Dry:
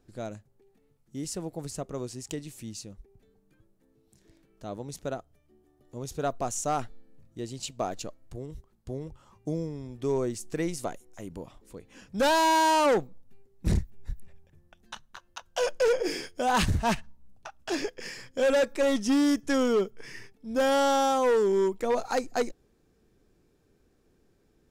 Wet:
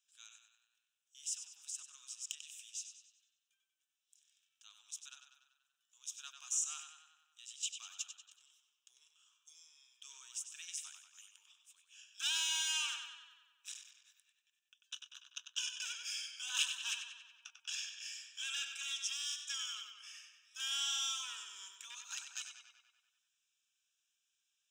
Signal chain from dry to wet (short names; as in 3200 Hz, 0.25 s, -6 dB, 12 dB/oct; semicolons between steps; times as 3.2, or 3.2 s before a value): ladder high-pass 2300 Hz, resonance 25%; fixed phaser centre 3000 Hz, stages 8; on a send: tape echo 95 ms, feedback 65%, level -6 dB, low-pass 5600 Hz; on the sum: gain +5 dB